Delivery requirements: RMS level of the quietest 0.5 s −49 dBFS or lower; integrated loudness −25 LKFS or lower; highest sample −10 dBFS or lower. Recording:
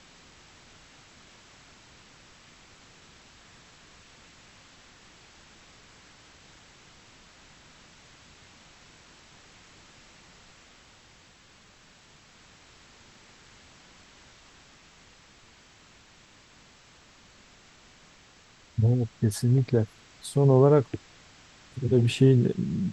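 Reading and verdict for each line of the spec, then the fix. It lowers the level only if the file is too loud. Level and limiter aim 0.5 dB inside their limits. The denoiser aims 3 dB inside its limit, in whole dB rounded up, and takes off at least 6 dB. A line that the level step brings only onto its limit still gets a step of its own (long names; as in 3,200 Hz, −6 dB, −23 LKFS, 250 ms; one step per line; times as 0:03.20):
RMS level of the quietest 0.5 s −56 dBFS: in spec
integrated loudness −24.0 LKFS: out of spec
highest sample −7.5 dBFS: out of spec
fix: level −1.5 dB
brickwall limiter −10.5 dBFS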